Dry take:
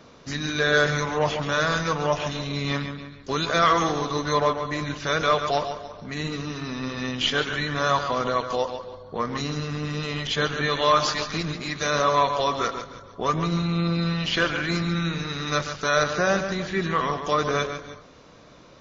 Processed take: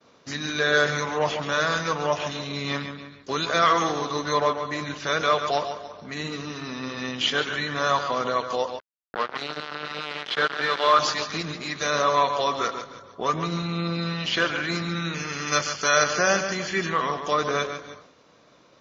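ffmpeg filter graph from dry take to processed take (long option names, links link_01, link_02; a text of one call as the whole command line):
ffmpeg -i in.wav -filter_complex "[0:a]asettb=1/sr,asplit=3[link_01][link_02][link_03];[link_01]atrim=end=8.794[link_04];[link_02]atrim=start=8.79:end=10.99,asetpts=PTS-STARTPTS,afade=type=in:duration=0.004:curve=qsin,afade=type=out:start_time=2.196:duration=0.004:curve=qsin,acrusher=bits=3:mix=0:aa=0.5,highpass=210,equalizer=frequency=260:width_type=q:width=4:gain=-6,equalizer=frequency=1400:width_type=q:width=4:gain=6,equalizer=frequency=2600:width_type=q:width=4:gain=-3,lowpass=frequency=4400:width=0.5412,lowpass=frequency=4400:width=1.3066[link_05];[link_03]atrim=start=10.986[link_06];[link_04][link_05]acrossfade=duration=0.004:curve1=hsin:curve2=qsin[link_07];[link_07][link_06]acrossfade=duration=0.004:curve1=qsin:curve2=hsin,asettb=1/sr,asplit=3[link_08][link_09][link_10];[link_08]atrim=end=15.144[link_11];[link_09]atrim=start=15.14:end=16.9,asetpts=PTS-STARTPTS,afade=type=in:duration=0.004:curve=qsin,afade=type=out:start_time=1.756:duration=0.004:curve=qsin,asuperstop=centerf=3800:order=12:qfactor=7.7,highshelf=frequency=2700:gain=10[link_12];[link_10]atrim=start=16.896[link_13];[link_11][link_12]acrossfade=duration=0.004:curve1=hsin:curve2=qsin[link_14];[link_14][link_13]acrossfade=duration=0.004:curve1=qsin:curve2=hsin,lowshelf=frequency=160:gain=-9.5,agate=range=-33dB:threshold=-46dB:ratio=3:detection=peak,highpass=62" out.wav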